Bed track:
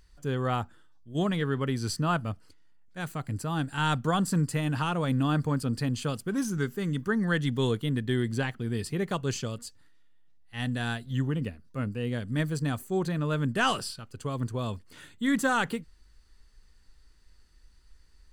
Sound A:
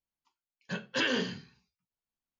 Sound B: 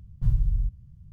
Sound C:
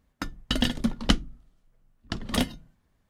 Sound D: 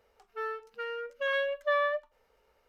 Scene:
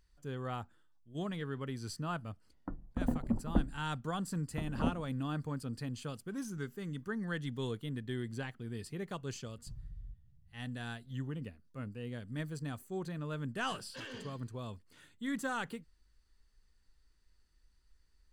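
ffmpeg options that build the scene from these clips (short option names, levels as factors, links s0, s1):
-filter_complex "[0:a]volume=0.282[s0];[3:a]lowpass=f=1000:w=0.5412,lowpass=f=1000:w=1.3066[s1];[2:a]acompressor=threshold=0.0501:ratio=6:attack=3.2:release=140:knee=1:detection=peak[s2];[1:a]asoftclip=type=tanh:threshold=0.0501[s3];[s1]atrim=end=3.09,asetpts=PTS-STARTPTS,volume=0.473,afade=t=in:d=0.004:c=hsin,afade=t=out:st=3.086:d=0.004:c=hsin,adelay=2460[s4];[s2]atrim=end=1.12,asetpts=PTS-STARTPTS,volume=0.15,afade=t=in:d=0.004:c=hsin,afade=t=out:st=1.116:d=0.004:c=hsin,adelay=9450[s5];[s3]atrim=end=2.39,asetpts=PTS-STARTPTS,volume=0.188,afade=t=in:d=0.004:c=hsin,afade=t=out:st=2.386:d=0.004:c=hsin,adelay=573300S[s6];[s0][s4][s5][s6]amix=inputs=4:normalize=0"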